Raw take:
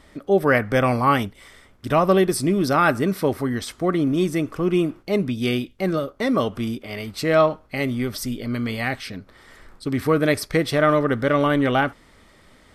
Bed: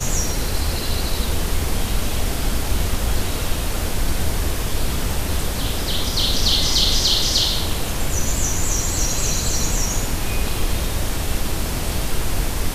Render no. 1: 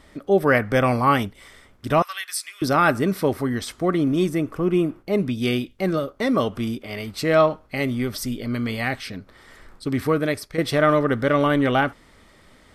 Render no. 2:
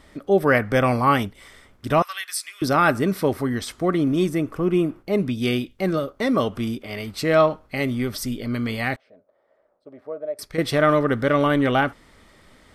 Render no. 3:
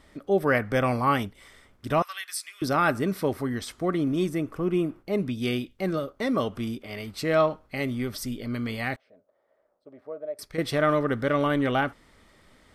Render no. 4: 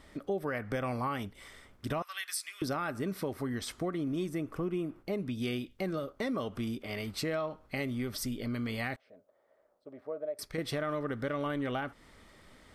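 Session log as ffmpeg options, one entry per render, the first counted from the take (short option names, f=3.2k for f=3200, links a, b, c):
-filter_complex "[0:a]asettb=1/sr,asplit=3[a][b][c];[a]atrim=end=2.024[d];[b]atrim=start=2.02:end=2.62,asetpts=PTS-STARTPTS,afade=t=in:d=0.004:c=qsin,afade=t=out:st=0.596:d=0.004:c=qsin,highpass=f=1.5k:w=0.5412,highpass=f=1.5k:w=1.3066[e];[c]atrim=start=2.616[f];[d][e]acrossfade=d=0.004:c1=hsin:c2=qsin[g];[g][f]acrossfade=d=0.004:c1=qsin:c2=hsin,asettb=1/sr,asplit=3[h][i][j];[h]atrim=end=4.294[k];[i]atrim=start=4.29:end=5.18,asetpts=PTS-STARTPTS,afade=t=in:d=0.004:c=qsin,afade=t=out:st=0.886:d=0.004:c=qsin,equalizer=f=4.9k:t=o:w=2.1:g=-6[l];[j]atrim=start=5.176[m];[k][l]acrossfade=d=0.004:c1=hsin:c2=qsin[n];[n][m]acrossfade=d=0.004:c1=qsin:c2=hsin,asplit=2[o][p];[o]atrim=end=10.58,asetpts=PTS-STARTPTS,afade=t=out:st=9.97:d=0.61:silence=0.281838[q];[p]atrim=start=10.58,asetpts=PTS-STARTPTS,afade=t=in:d=0.004:c=hsin:silence=0.281838[r];[q][r]concat=n=2:v=0:a=1"
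-filter_complex "[0:a]asettb=1/sr,asplit=3[a][b][c];[a]atrim=end=8.964[d];[b]atrim=start=8.96:end=10.39,asetpts=PTS-STARTPTS,afade=t=in:d=0.004:c=qsin,afade=t=out:st=1.426:d=0.004:c=qsin,bandpass=f=600:t=q:w=7.2[e];[c]atrim=start=10.386[f];[d][e]acrossfade=d=0.004:c1=hsin:c2=qsin[g];[g][f]acrossfade=d=0.004:c1=qsin:c2=hsin"
-af "volume=-5dB"
-af "alimiter=limit=-16.5dB:level=0:latency=1:release=247,acompressor=threshold=-33dB:ratio=3"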